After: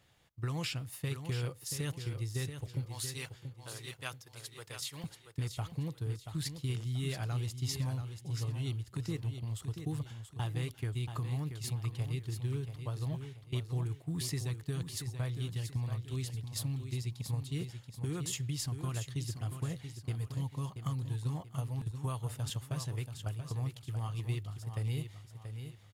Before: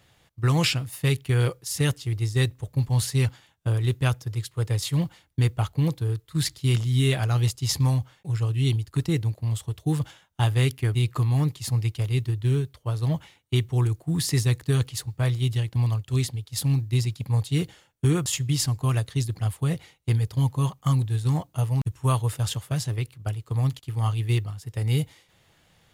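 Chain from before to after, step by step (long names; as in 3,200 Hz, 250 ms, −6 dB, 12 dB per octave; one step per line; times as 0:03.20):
0:02.85–0:05.04: high-pass filter 1,200 Hz 6 dB per octave
downward compressor, threshold −25 dBFS, peak gain reduction 8 dB
repeating echo 682 ms, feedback 34%, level −8.5 dB
level −8 dB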